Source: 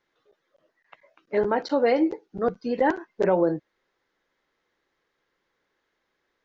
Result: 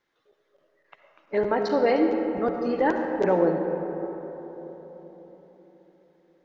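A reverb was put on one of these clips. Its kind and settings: digital reverb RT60 4.3 s, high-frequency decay 0.35×, pre-delay 30 ms, DRR 4 dB; gain -1 dB

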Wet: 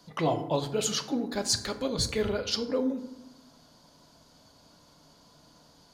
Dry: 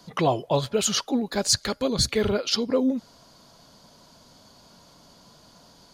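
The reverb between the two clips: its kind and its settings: FDN reverb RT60 0.93 s, low-frequency decay 1.4×, high-frequency decay 0.5×, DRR 7 dB; gain -6 dB

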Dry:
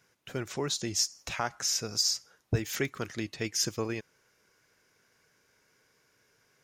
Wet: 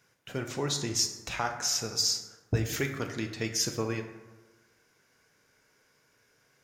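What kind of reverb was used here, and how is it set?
plate-style reverb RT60 1.2 s, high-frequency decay 0.45×, DRR 4.5 dB

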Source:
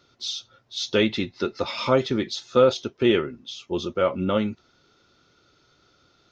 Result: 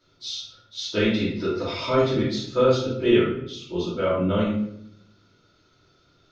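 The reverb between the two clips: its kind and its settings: shoebox room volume 140 m³, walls mixed, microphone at 2.8 m; gain -10.5 dB

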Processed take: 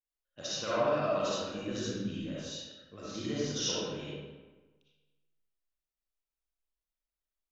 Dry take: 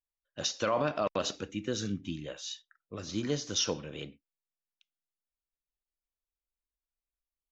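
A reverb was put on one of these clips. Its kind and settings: digital reverb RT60 1.3 s, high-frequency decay 0.65×, pre-delay 20 ms, DRR -8.5 dB; gain -9.5 dB

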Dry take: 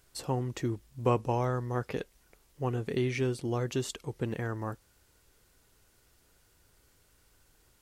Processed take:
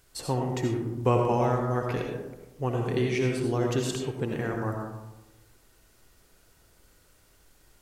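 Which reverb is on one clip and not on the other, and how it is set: digital reverb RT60 1.1 s, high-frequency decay 0.35×, pre-delay 40 ms, DRR 1 dB; gain +2.5 dB

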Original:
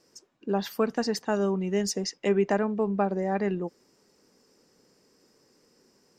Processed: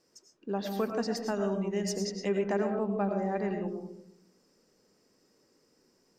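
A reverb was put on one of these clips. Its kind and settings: digital reverb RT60 0.72 s, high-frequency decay 0.25×, pre-delay 65 ms, DRR 4.5 dB; gain -6 dB

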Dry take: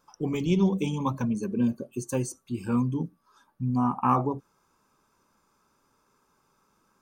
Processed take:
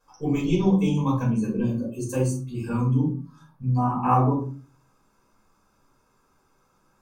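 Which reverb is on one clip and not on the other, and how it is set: shoebox room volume 240 m³, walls furnished, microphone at 5.3 m; gain -7 dB

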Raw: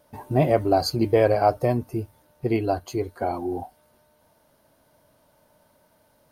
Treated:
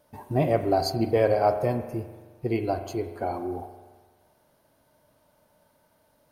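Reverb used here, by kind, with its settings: spring tank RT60 1.4 s, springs 43 ms, chirp 65 ms, DRR 8.5 dB; gain -3.5 dB

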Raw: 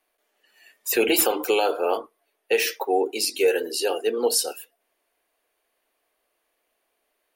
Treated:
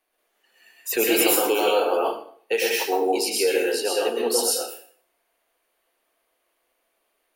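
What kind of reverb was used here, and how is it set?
plate-style reverb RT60 0.52 s, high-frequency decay 0.9×, pre-delay 0.1 s, DRR -3 dB; gain -2.5 dB

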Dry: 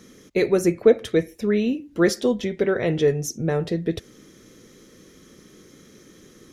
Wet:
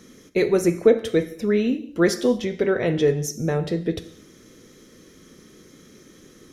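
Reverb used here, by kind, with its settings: non-linear reverb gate 0.26 s falling, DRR 10.5 dB

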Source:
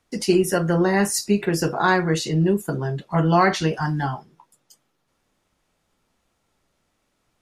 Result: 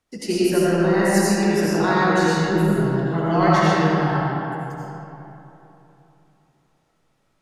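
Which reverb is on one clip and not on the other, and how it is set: digital reverb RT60 3.2 s, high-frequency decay 0.55×, pre-delay 45 ms, DRR -8 dB; gain -6.5 dB

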